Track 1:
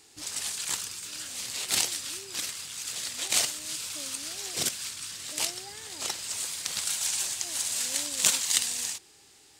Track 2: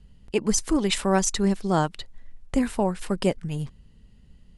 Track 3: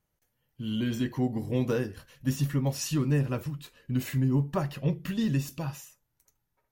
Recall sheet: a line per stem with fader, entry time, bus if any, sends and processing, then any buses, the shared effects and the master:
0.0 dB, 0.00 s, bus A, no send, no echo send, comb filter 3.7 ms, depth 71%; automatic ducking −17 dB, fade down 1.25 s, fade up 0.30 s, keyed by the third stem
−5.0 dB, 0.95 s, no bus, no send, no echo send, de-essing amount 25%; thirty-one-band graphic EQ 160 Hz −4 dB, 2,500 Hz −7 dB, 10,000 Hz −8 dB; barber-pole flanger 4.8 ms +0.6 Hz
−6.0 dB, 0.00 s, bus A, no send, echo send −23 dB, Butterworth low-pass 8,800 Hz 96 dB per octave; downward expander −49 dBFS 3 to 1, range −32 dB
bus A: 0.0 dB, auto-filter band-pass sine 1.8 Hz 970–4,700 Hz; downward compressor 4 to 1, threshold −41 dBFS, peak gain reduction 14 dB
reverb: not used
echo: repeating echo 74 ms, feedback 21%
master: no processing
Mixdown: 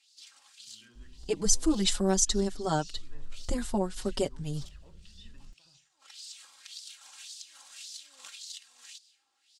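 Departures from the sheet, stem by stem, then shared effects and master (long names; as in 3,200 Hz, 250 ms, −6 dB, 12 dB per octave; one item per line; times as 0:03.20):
stem 2 −5.0 dB → +5.5 dB
master: extra graphic EQ with 10 bands 125 Hz −7 dB, 250 Hz −5 dB, 500 Hz −7 dB, 1,000 Hz −7 dB, 2,000 Hz −9 dB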